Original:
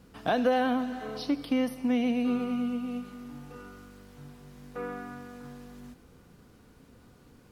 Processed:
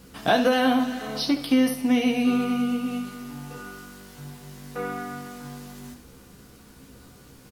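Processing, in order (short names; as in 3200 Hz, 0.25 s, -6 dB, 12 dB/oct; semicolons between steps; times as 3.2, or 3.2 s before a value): high shelf 3400 Hz +9.5 dB; on a send: early reflections 15 ms -5 dB, 69 ms -9.5 dB; on the sum: gain +4.5 dB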